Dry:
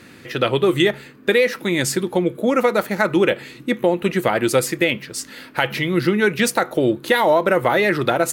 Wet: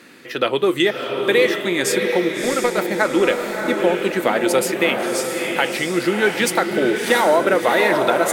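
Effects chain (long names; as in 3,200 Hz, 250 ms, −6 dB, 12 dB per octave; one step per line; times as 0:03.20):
high-pass filter 250 Hz 12 dB per octave
0:02.32–0:02.80: power curve on the samples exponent 1.4
feedback delay with all-pass diffusion 664 ms, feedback 45%, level −4 dB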